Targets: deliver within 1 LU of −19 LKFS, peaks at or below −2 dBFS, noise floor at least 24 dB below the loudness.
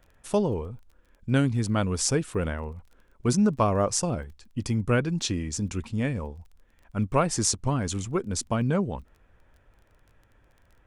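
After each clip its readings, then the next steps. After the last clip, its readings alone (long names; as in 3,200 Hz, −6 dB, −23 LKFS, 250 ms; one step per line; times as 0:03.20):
crackle rate 20 per second; integrated loudness −27.0 LKFS; sample peak −6.5 dBFS; target loudness −19.0 LKFS
→ click removal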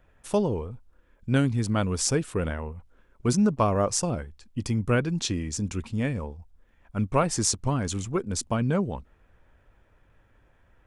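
crackle rate 0 per second; integrated loudness −27.0 LKFS; sample peak −6.5 dBFS; target loudness −19.0 LKFS
→ level +8 dB
brickwall limiter −2 dBFS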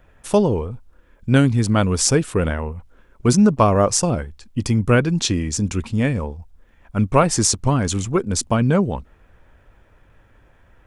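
integrated loudness −19.0 LKFS; sample peak −2.0 dBFS; background noise floor −54 dBFS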